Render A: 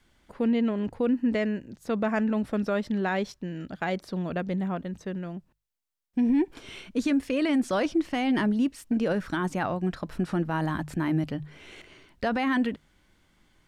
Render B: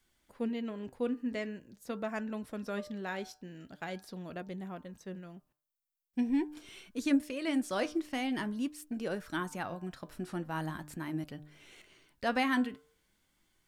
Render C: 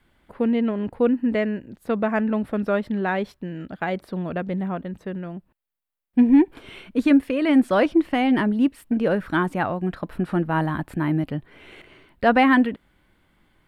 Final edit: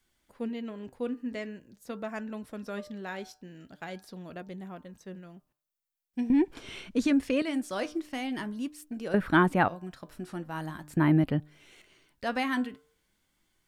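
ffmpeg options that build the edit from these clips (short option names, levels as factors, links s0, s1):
-filter_complex "[2:a]asplit=2[s0][s1];[1:a]asplit=4[s2][s3][s4][s5];[s2]atrim=end=6.302[s6];[0:a]atrim=start=6.298:end=7.422[s7];[s3]atrim=start=7.418:end=9.142[s8];[s0]atrim=start=9.138:end=9.682[s9];[s4]atrim=start=9.678:end=10.972[s10];[s1]atrim=start=10.968:end=11.402[s11];[s5]atrim=start=11.398[s12];[s6][s7]acrossfade=d=0.004:c1=hsin:c2=hsin[s13];[s13][s8]acrossfade=d=0.004:c1=hsin:c2=hsin[s14];[s14][s9]acrossfade=d=0.004:c1=hsin:c2=hsin[s15];[s15][s10]acrossfade=d=0.004:c1=hsin:c2=hsin[s16];[s16][s11]acrossfade=d=0.004:c1=hsin:c2=hsin[s17];[s17][s12]acrossfade=d=0.004:c1=hsin:c2=hsin"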